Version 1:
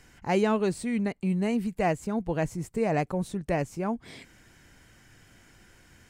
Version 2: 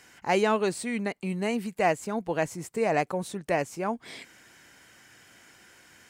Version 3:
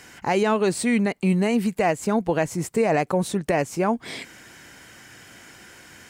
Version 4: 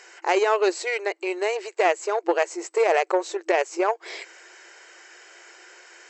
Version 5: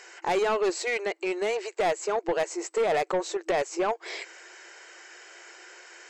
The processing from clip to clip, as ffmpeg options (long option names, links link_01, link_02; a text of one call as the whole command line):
ffmpeg -i in.wav -af "highpass=frequency=510:poles=1,volume=4.5dB" out.wav
ffmpeg -i in.wav -af "lowshelf=frequency=360:gain=4,alimiter=limit=-20dB:level=0:latency=1:release=150,volume=8dB" out.wav
ffmpeg -i in.wav -af "aeval=exprs='0.266*(cos(1*acos(clip(val(0)/0.266,-1,1)))-cos(1*PI/2))+0.0335*(cos(2*acos(clip(val(0)/0.266,-1,1)))-cos(2*PI/2))+0.0266*(cos(3*acos(clip(val(0)/0.266,-1,1)))-cos(3*PI/2))+0.00211*(cos(8*acos(clip(val(0)/0.266,-1,1)))-cos(8*PI/2))':channel_layout=same,afftfilt=real='re*between(b*sr/4096,330,8000)':imag='im*between(b*sr/4096,330,8000)':win_size=4096:overlap=0.75,equalizer=frequency=3400:width_type=o:width=0.22:gain=-6,volume=2.5dB" out.wav
ffmpeg -i in.wav -af "asoftclip=type=tanh:threshold=-20dB" out.wav